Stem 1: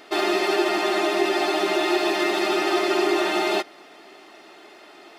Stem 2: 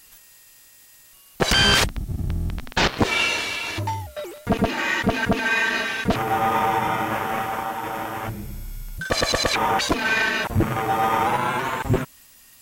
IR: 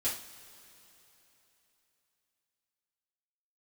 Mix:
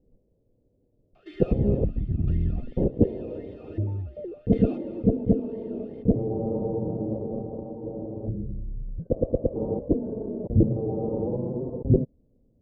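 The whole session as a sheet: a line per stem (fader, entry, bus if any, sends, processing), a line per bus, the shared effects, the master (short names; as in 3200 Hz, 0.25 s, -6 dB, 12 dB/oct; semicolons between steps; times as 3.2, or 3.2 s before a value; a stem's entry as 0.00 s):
2 s -4.5 dB -> 2.57 s -16 dB -> 3.53 s -16 dB -> 4.17 s -6 dB, 1.15 s, no send, echo send -13 dB, step gate "xx....xxx.xx" 80 bpm -24 dB; compressor 2:1, threshold -32 dBFS, peak gain reduction 9 dB; vowel sweep a-i 2.8 Hz
+2.0 dB, 0.00 s, no send, no echo send, elliptic low-pass 520 Hz, stop band 70 dB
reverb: off
echo: feedback echo 0.241 s, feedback 37%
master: dry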